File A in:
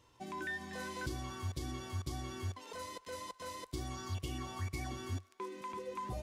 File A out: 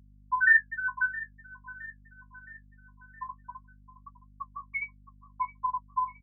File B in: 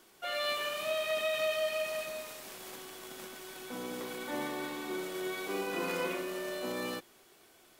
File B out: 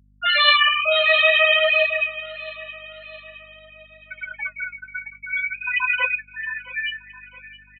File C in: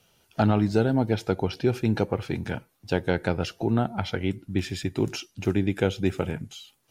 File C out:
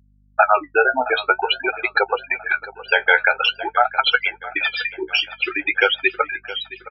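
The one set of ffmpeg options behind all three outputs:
ffmpeg -i in.wav -filter_complex "[0:a]acrossover=split=4700[link_01][link_02];[link_02]acompressor=threshold=-59dB:ratio=4:attack=1:release=60[link_03];[link_01][link_03]amix=inputs=2:normalize=0,highpass=1300,afftfilt=real='re*gte(hypot(re,im),0.0355)':imag='im*gte(hypot(re,im),0.0355)':win_size=1024:overlap=0.75,acontrast=23,aresample=22050,aresample=44100,flanger=delay=7.5:depth=8.6:regen=38:speed=0.5:shape=sinusoidal,asplit=2[link_04][link_05];[link_05]aecho=0:1:667|1334|2001|2668:0.133|0.068|0.0347|0.0177[link_06];[link_04][link_06]amix=inputs=2:normalize=0,aeval=exprs='val(0)+0.000141*(sin(2*PI*50*n/s)+sin(2*PI*2*50*n/s)/2+sin(2*PI*3*50*n/s)/3+sin(2*PI*4*50*n/s)/4+sin(2*PI*5*50*n/s)/5)':channel_layout=same,alimiter=level_in=23dB:limit=-1dB:release=50:level=0:latency=1,volume=-1dB" out.wav

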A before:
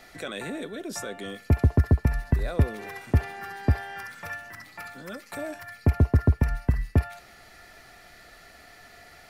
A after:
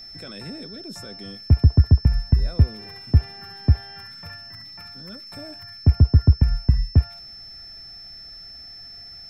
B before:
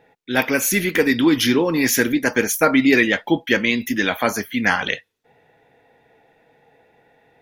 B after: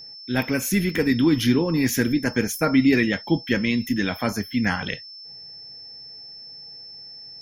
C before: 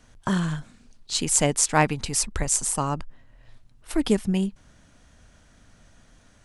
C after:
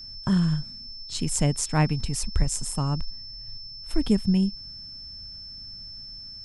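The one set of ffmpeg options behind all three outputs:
ffmpeg -i in.wav -af "bass=frequency=250:gain=14,treble=frequency=4000:gain=0,aeval=exprs='val(0)+0.0282*sin(2*PI*5300*n/s)':channel_layout=same,volume=-7.5dB" out.wav

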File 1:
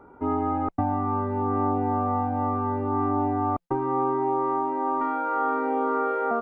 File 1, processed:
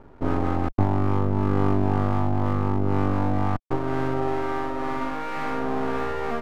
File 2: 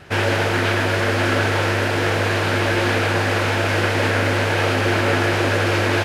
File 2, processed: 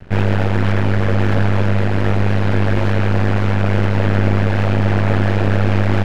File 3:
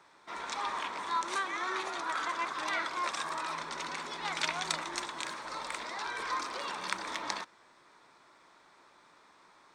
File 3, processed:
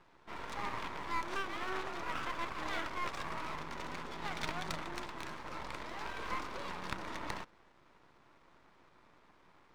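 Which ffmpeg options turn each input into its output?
ffmpeg -i in.wav -af "aemphasis=mode=reproduction:type=riaa,aeval=exprs='max(val(0),0)':channel_layout=same" out.wav

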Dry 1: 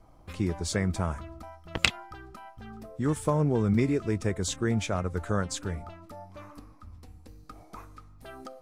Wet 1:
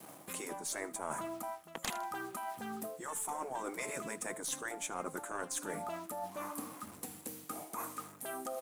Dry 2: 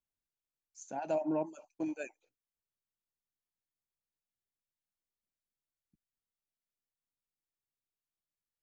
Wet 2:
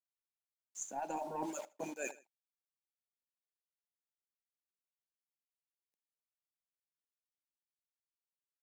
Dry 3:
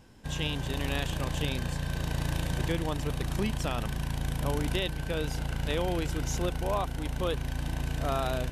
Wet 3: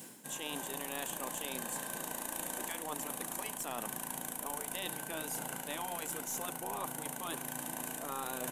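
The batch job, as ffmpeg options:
ffmpeg -i in.wav -filter_complex "[0:a]aexciter=amount=11.3:drive=3.3:freq=7100,afftfilt=real='re*lt(hypot(re,im),0.158)':imag='im*lt(hypot(re,im),0.158)':win_size=1024:overlap=0.75,adynamicequalizer=threshold=0.00355:dfrequency=910:dqfactor=0.98:tfrequency=910:tqfactor=0.98:attack=5:release=100:ratio=0.375:range=3.5:mode=boostabove:tftype=bell,bandreject=frequency=1300:width=25,acrusher=bits=8:mix=0:aa=0.5,highpass=frequency=170:width=0.5412,highpass=frequency=170:width=1.3066,highshelf=frequency=12000:gain=-6.5,asplit=2[link_01][link_02];[link_02]aecho=0:1:79|158:0.0891|0.0241[link_03];[link_01][link_03]amix=inputs=2:normalize=0,aeval=exprs='(tanh(3.98*val(0)+0.45)-tanh(0.45))/3.98':channel_layout=same,areverse,acompressor=threshold=-48dB:ratio=5,areverse,volume=9.5dB" out.wav

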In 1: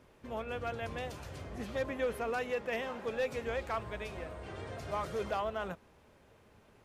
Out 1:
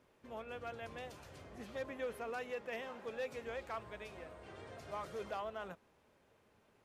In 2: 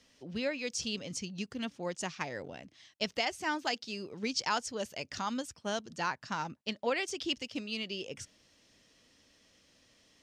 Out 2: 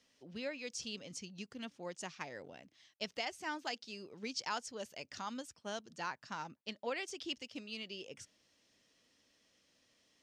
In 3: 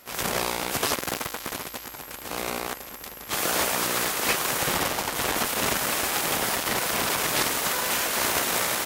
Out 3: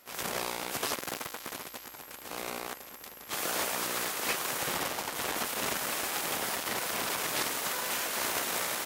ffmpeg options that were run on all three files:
ffmpeg -i in.wav -af "lowshelf=frequency=110:gain=-9,volume=-7dB" out.wav

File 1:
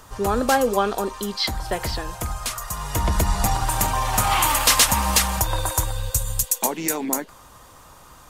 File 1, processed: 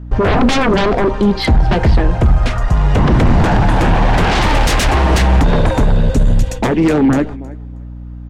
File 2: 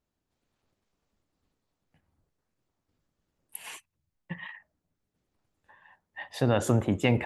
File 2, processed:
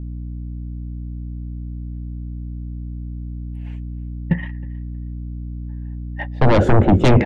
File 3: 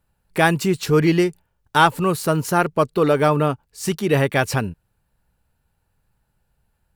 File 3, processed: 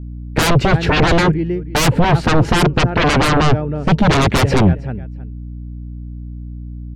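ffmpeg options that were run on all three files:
ffmpeg -i in.wav -af "lowpass=2100,equalizer=frequency=1100:width_type=o:width=0.45:gain=-11.5,agate=range=-19dB:threshold=-42dB:ratio=16:detection=peak,aecho=1:1:316|632:0.0668|0.0107,aeval=exprs='0.501*sin(PI/2*7.94*val(0)/0.501)':channel_layout=same,aeval=exprs='val(0)+0.0398*(sin(2*PI*60*n/s)+sin(2*PI*2*60*n/s)/2+sin(2*PI*3*60*n/s)/3+sin(2*PI*4*60*n/s)/4+sin(2*PI*5*60*n/s)/5)':channel_layout=same,lowshelf=frequency=480:gain=8.5,volume=-7.5dB" out.wav

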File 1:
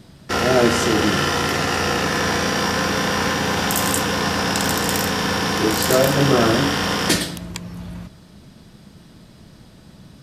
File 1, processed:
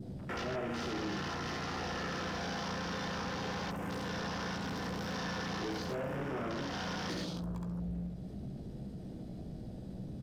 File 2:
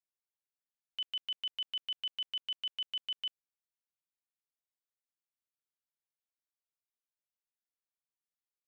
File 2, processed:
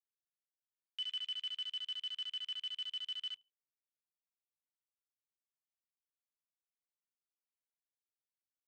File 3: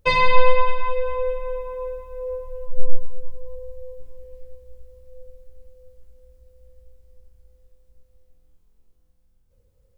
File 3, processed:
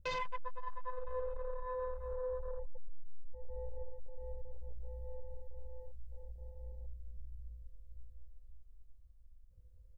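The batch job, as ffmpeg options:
ffmpeg -i in.wav -filter_complex "[0:a]aecho=1:1:68|136|204:0.596|0.113|0.0215,acrossover=split=670[link_01][link_02];[link_02]alimiter=limit=-10dB:level=0:latency=1:release=201[link_03];[link_01][link_03]amix=inputs=2:normalize=0,acompressor=threshold=-38dB:ratio=2.5,adynamicequalizer=threshold=0.00224:dfrequency=2400:dqfactor=1.7:tfrequency=2400:tqfactor=1.7:attack=5:release=100:ratio=0.375:range=2.5:mode=cutabove:tftype=bell,asoftclip=type=tanh:threshold=-36dB,asplit=2[link_04][link_05];[link_05]adelay=16,volume=-9.5dB[link_06];[link_04][link_06]amix=inputs=2:normalize=0,afwtdn=0.00398,volume=1.5dB" out.wav

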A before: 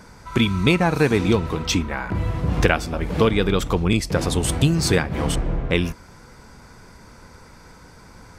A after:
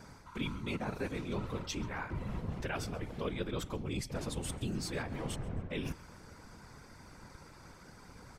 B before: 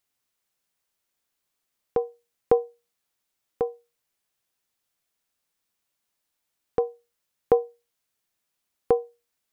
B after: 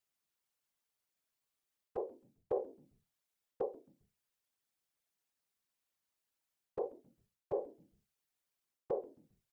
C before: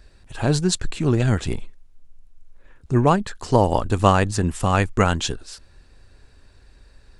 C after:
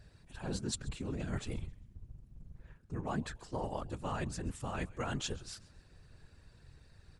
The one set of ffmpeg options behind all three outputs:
ffmpeg -i in.wav -filter_complex "[0:a]areverse,acompressor=threshold=-26dB:ratio=8,areverse,afftfilt=real='hypot(re,im)*cos(2*PI*random(0))':imag='hypot(re,im)*sin(2*PI*random(1))':win_size=512:overlap=0.75,asplit=4[link_01][link_02][link_03][link_04];[link_02]adelay=133,afreqshift=-120,volume=-21.5dB[link_05];[link_03]adelay=266,afreqshift=-240,volume=-30.6dB[link_06];[link_04]adelay=399,afreqshift=-360,volume=-39.7dB[link_07];[link_01][link_05][link_06][link_07]amix=inputs=4:normalize=0,volume=-2dB" out.wav

